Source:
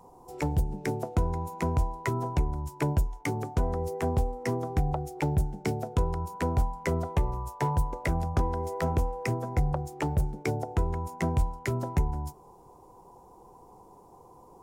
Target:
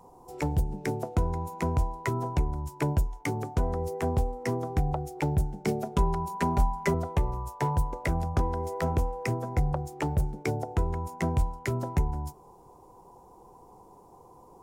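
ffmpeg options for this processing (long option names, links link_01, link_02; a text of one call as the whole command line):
ffmpeg -i in.wav -filter_complex "[0:a]asettb=1/sr,asplit=3[link_01][link_02][link_03];[link_01]atrim=end=5.674[link_04];[link_02]atrim=start=5.67:end=6.94,asetpts=PTS-STARTPTS,afade=type=in:duration=0.004:curve=qsin,afade=type=out:start_time=1.266:duration=0.004:curve=qsin,aecho=1:1:5:0.9,atrim=end_sample=56007[link_05];[link_03]atrim=start=6.936[link_06];[link_04][link_05]acrossfade=duration=0.004:curve1=hsin:curve2=qsin[link_07];[link_07][link_06]acrossfade=duration=0.004:curve1=qsin:curve2=hsin" out.wav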